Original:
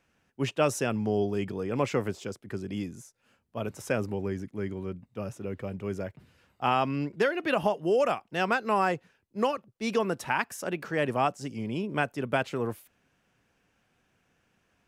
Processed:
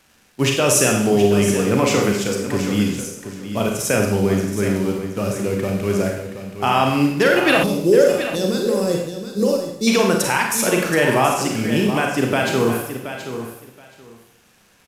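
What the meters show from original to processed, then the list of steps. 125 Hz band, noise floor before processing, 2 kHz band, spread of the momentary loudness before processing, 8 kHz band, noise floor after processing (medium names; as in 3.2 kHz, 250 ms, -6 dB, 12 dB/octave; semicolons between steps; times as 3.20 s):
+12.0 dB, -72 dBFS, +11.0 dB, 12 LU, +21.0 dB, -55 dBFS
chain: in parallel at -11 dB: bit crusher 7-bit; on the sum: peak limiter -16.5 dBFS, peak gain reduction 8 dB; treble shelf 3.8 kHz +9.5 dB; crackle 410 per s -53 dBFS; resampled via 32 kHz; Schroeder reverb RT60 0.74 s, combs from 31 ms, DRR 1 dB; time-frequency box 7.63–9.88 s, 590–3400 Hz -18 dB; on a send: feedback delay 725 ms, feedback 17%, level -10.5 dB; on the sum: trim +8.5 dB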